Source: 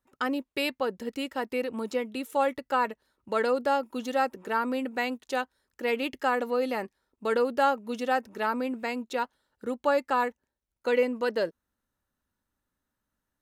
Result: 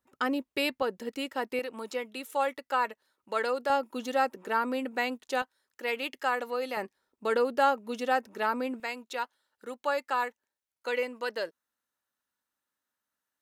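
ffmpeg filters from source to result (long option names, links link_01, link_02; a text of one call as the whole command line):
ffmpeg -i in.wav -af "asetnsamples=nb_out_samples=441:pad=0,asendcmd='0.82 highpass f 260;1.59 highpass f 680;3.7 highpass f 240;5.42 highpass f 760;6.77 highpass f 250;8.8 highpass f 980',highpass=frequency=78:poles=1" out.wav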